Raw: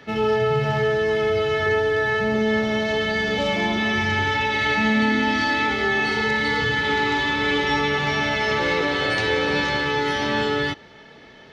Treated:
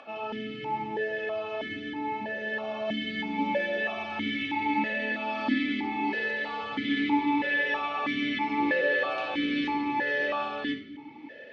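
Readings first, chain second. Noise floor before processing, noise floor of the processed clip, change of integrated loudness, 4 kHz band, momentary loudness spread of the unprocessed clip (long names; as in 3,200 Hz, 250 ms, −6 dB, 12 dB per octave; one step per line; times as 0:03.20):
−46 dBFS, −45 dBFS, −8.5 dB, −11.0 dB, 2 LU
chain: upward compression, threshold −33 dBFS
rectangular room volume 2,800 cubic metres, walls furnished, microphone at 2.4 metres
formant filter that steps through the vowels 3.1 Hz
level +2.5 dB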